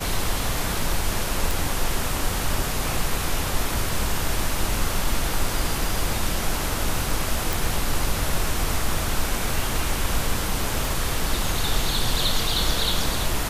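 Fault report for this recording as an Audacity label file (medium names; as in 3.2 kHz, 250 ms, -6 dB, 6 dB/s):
1.510000	1.510000	pop
7.530000	7.530000	pop
10.850000	10.850000	pop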